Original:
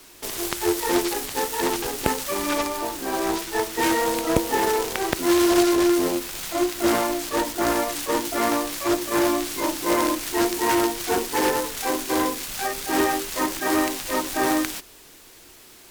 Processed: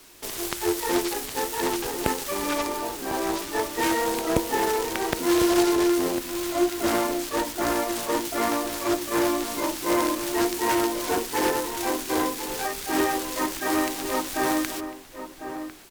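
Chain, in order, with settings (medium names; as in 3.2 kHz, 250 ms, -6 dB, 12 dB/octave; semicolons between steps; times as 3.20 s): echo from a far wall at 180 m, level -9 dB; trim -2.5 dB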